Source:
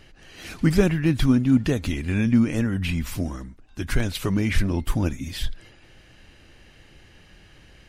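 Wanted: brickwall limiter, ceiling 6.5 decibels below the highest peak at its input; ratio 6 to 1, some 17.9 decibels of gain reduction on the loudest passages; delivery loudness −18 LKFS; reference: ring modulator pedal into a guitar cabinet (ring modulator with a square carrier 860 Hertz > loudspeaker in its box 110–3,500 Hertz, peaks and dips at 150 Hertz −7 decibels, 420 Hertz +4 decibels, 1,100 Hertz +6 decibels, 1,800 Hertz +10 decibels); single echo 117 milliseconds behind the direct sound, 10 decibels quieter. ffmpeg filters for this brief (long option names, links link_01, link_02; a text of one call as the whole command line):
ffmpeg -i in.wav -af "acompressor=threshold=-34dB:ratio=6,alimiter=level_in=5.5dB:limit=-24dB:level=0:latency=1,volume=-5.5dB,aecho=1:1:117:0.316,aeval=exprs='val(0)*sgn(sin(2*PI*860*n/s))':channel_layout=same,highpass=110,equalizer=frequency=150:width_type=q:width=4:gain=-7,equalizer=frequency=420:width_type=q:width=4:gain=4,equalizer=frequency=1100:width_type=q:width=4:gain=6,equalizer=frequency=1800:width_type=q:width=4:gain=10,lowpass=frequency=3500:width=0.5412,lowpass=frequency=3500:width=1.3066,volume=17.5dB" out.wav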